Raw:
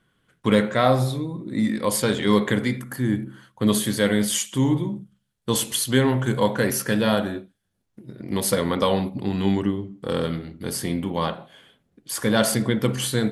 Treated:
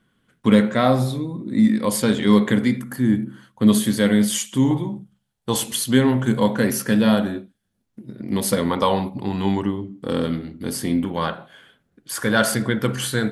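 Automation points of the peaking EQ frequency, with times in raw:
peaking EQ +8 dB 0.46 oct
230 Hz
from 4.71 s 790 Hz
from 5.68 s 230 Hz
from 8.70 s 920 Hz
from 9.81 s 260 Hz
from 11.05 s 1.5 kHz

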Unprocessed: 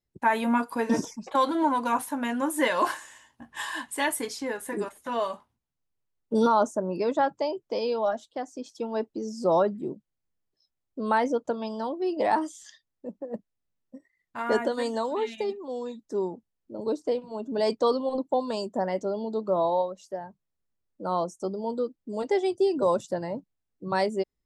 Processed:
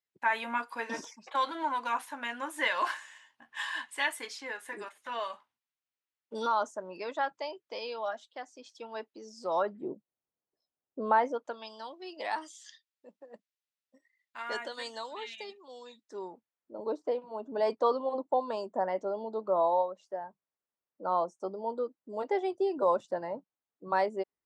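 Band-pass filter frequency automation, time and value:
band-pass filter, Q 0.81
9.52 s 2.3 kHz
9.92 s 610 Hz
11.03 s 610 Hz
11.66 s 3.3 kHz
15.84 s 3.3 kHz
16.79 s 1 kHz

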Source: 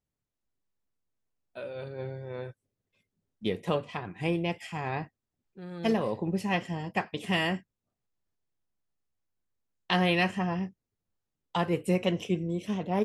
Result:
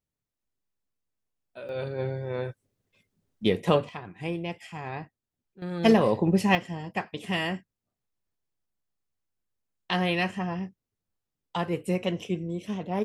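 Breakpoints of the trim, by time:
-1.5 dB
from 1.69 s +6.5 dB
from 3.89 s -3 dB
from 5.62 s +7.5 dB
from 6.55 s -1 dB

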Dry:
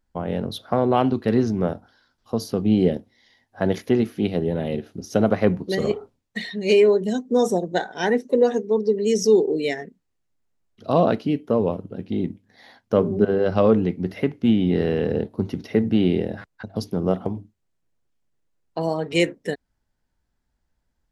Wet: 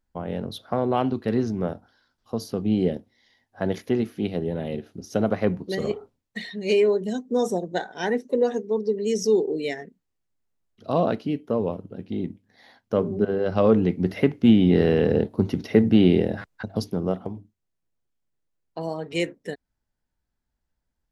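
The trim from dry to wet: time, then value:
13.43 s -4 dB
14.03 s +2.5 dB
16.66 s +2.5 dB
17.24 s -6 dB

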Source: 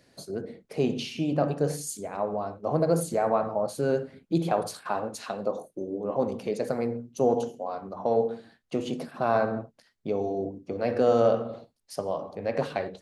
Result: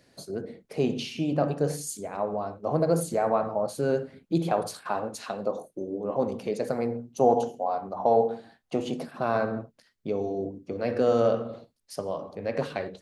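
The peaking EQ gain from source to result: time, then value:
peaking EQ 770 Hz 0.65 oct
6.70 s 0 dB
7.16 s +8 dB
8.78 s +8 dB
9.31 s -4 dB

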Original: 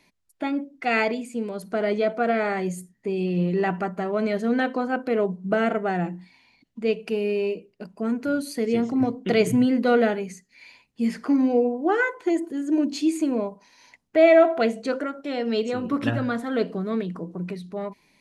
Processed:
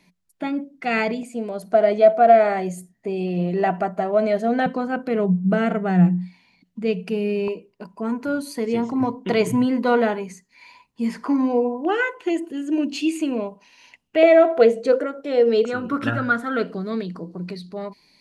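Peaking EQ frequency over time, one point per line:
peaking EQ +14.5 dB 0.3 oct
180 Hz
from 1.23 s 680 Hz
from 4.66 s 180 Hz
from 7.48 s 980 Hz
from 11.85 s 2.8 kHz
from 14.23 s 480 Hz
from 15.65 s 1.4 kHz
from 16.74 s 4.5 kHz

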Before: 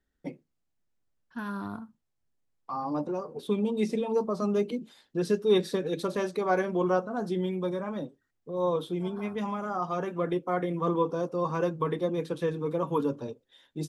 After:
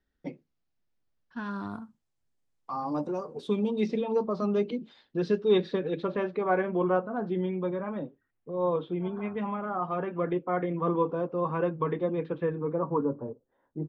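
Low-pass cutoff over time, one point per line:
low-pass 24 dB/octave
1.38 s 5.7 kHz
1.81 s 10 kHz
3.27 s 10 kHz
3.92 s 4.6 kHz
5.21 s 4.6 kHz
6.25 s 2.8 kHz
12.21 s 2.8 kHz
13.16 s 1.2 kHz

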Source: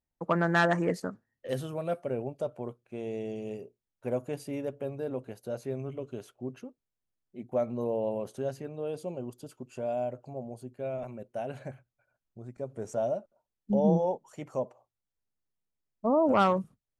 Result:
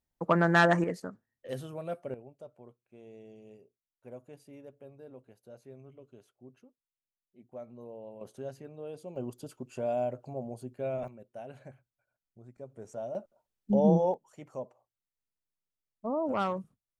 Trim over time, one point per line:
+2 dB
from 0.84 s -5 dB
from 2.14 s -15 dB
from 8.21 s -7 dB
from 9.16 s +1 dB
from 11.08 s -8.5 dB
from 13.15 s +1 dB
from 14.14 s -7 dB

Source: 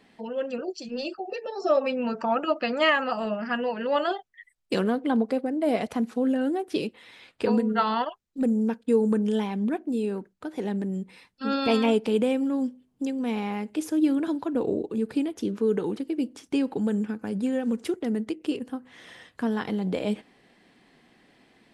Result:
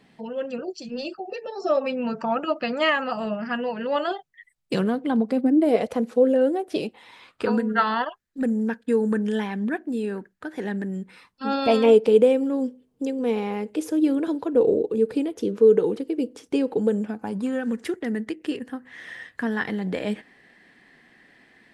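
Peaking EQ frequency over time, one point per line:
peaking EQ +12.5 dB 0.44 oct
5.16 s 150 Hz
5.82 s 510 Hz
6.51 s 510 Hz
7.68 s 1.7 kHz
11.02 s 1.7 kHz
11.88 s 470 Hz
16.88 s 470 Hz
17.73 s 1.8 kHz

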